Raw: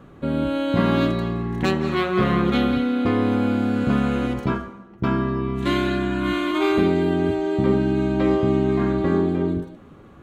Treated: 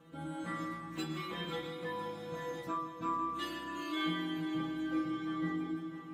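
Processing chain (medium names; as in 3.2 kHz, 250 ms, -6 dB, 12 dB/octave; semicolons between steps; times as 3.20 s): treble shelf 2.5 kHz +3 dB; plain phase-vocoder stretch 0.6×; treble shelf 5.7 kHz +5.5 dB; in parallel at +1 dB: compression, threshold -34 dBFS, peak gain reduction 16 dB; on the sum: high-pass 120 Hz 6 dB/octave; inharmonic resonator 160 Hz, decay 0.49 s, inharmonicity 0.002; multi-head delay 165 ms, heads first and third, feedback 62%, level -14 dB; reverberation RT60 0.45 s, pre-delay 4 ms, DRR 8.5 dB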